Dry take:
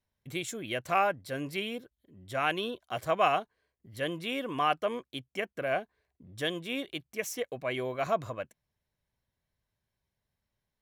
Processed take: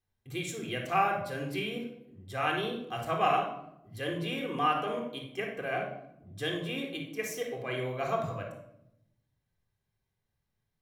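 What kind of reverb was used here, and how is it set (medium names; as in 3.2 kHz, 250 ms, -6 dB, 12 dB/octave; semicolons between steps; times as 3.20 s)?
simulated room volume 2100 m³, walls furnished, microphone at 3.8 m; trim -4.5 dB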